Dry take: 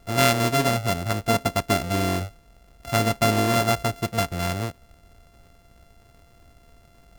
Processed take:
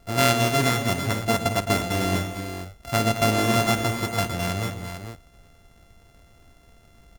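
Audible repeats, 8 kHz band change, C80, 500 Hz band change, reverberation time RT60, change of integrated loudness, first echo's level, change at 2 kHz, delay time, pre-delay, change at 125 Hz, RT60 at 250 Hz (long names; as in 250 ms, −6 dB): 5, +0.5 dB, no reverb audible, −0.5 dB, no reverb audible, 0.0 dB, −15.5 dB, +1.0 dB, 50 ms, no reverb audible, +0.5 dB, no reverb audible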